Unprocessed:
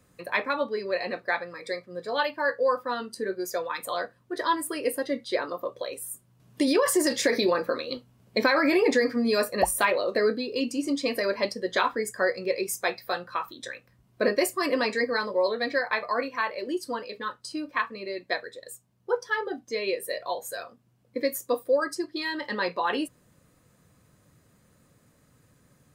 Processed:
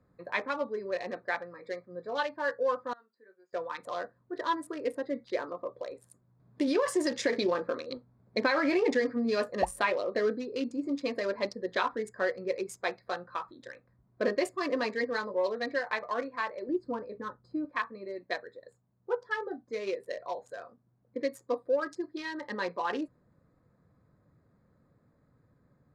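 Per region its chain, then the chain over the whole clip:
2.93–3.53 s: low-pass 2 kHz + differentiator
16.69–17.65 s: tilt EQ -2.5 dB/octave + tape noise reduction on one side only decoder only
whole clip: local Wiener filter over 15 samples; low-pass 6.5 kHz 12 dB/octave; trim -4.5 dB

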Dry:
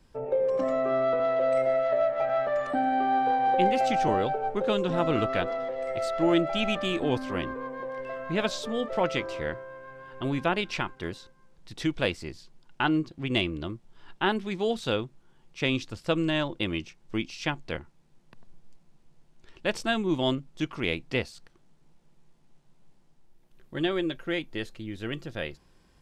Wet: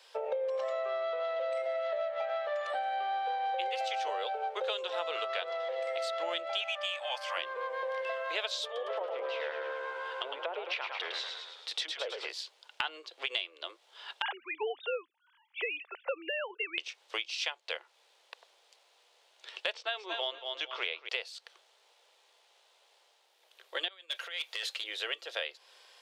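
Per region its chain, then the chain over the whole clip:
6.61–7.37 s: steep high-pass 560 Hz 96 dB/octave + peaking EQ 3.9 kHz -11 dB 0.21 oct + comb 3.5 ms, depth 30%
8.65–12.30 s: low-pass that closes with the level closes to 680 Hz, closed at -23 dBFS + compression 2.5:1, threshold -33 dBFS + frequency-shifting echo 107 ms, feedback 60%, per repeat -72 Hz, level -6 dB
14.22–16.78 s: formants replaced by sine waves + distance through air 340 m
19.74–21.09 s: distance through air 160 m + feedback delay 231 ms, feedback 30%, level -10 dB
23.88–24.84 s: compressor with a negative ratio -35 dBFS, ratio -0.5 + high-pass 1.2 kHz 6 dB/octave + hard clipper -37 dBFS
whole clip: steep high-pass 460 Hz 48 dB/octave; peaking EQ 3.5 kHz +10.5 dB 1.2 oct; compression, threshold -38 dBFS; trim +5.5 dB

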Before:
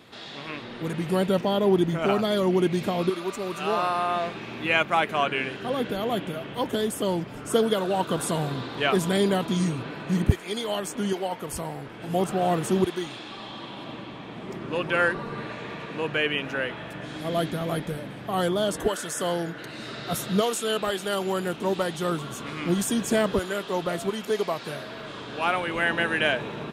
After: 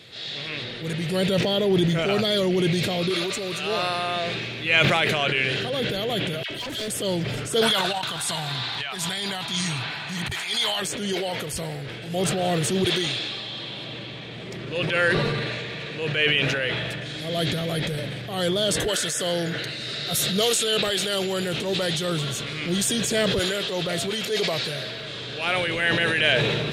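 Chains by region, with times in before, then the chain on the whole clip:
6.43–6.88 s: comb 3.1 ms + phase dispersion lows, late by 70 ms, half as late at 1.1 kHz + hard clipper -30.5 dBFS
7.61–10.82 s: resonant low shelf 650 Hz -8.5 dB, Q 3 + compressor with a negative ratio -31 dBFS, ratio -0.5
19.89–20.53 s: treble shelf 8 kHz +8.5 dB + hum notches 60/120 Hz
whole clip: graphic EQ 125/250/500/1000/2000/4000/8000 Hz +8/-6/+5/-9/+5/+10/+4 dB; transient shaper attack -6 dB, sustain +3 dB; decay stretcher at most 23 dB/s

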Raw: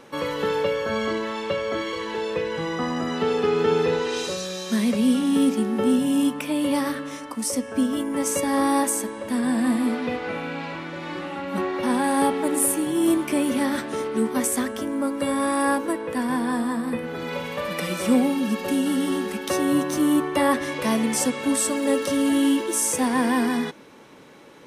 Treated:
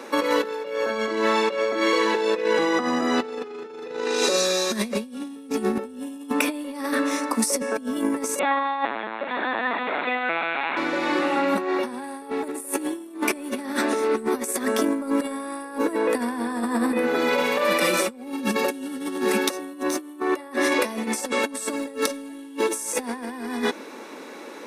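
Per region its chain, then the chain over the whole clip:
8.39–10.77 s: high-pass 720 Hz + LPC vocoder at 8 kHz pitch kept
whole clip: steep high-pass 230 Hz 36 dB/octave; band-stop 3.1 kHz, Q 8.2; compressor with a negative ratio -29 dBFS, ratio -0.5; trim +4.5 dB

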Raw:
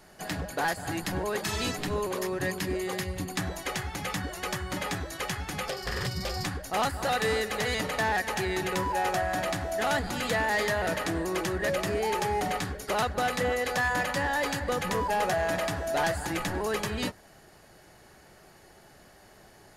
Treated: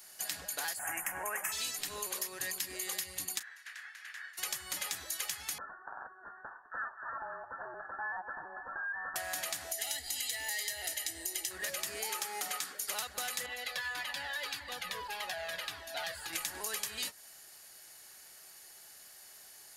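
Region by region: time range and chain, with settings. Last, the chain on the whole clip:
0.79–1.52 s: Butterworth band-stop 4.1 kHz, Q 0.82 + high-order bell 1.3 kHz +8.5 dB 2.5 oct
3.38–4.37 s: spectral peaks clipped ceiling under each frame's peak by 19 dB + band-pass filter 1.7 kHz, Q 6.8 + doubling 34 ms -14 dB
5.58–9.16 s: steep high-pass 880 Hz 96 dB/octave + frequency inversion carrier 2.6 kHz
9.72–11.51 s: static phaser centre 450 Hz, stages 4 + comb 1 ms, depth 64%
12.09–12.80 s: high-pass 180 Hz 24 dB/octave + peaking EQ 1.3 kHz +8.5 dB 0.21 oct
13.46–16.33 s: resonant high shelf 5.2 kHz -9.5 dB, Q 1.5 + Shepard-style flanger falling 1.7 Hz
whole clip: pre-emphasis filter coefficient 0.97; compression, threshold -42 dBFS; trim +8.5 dB

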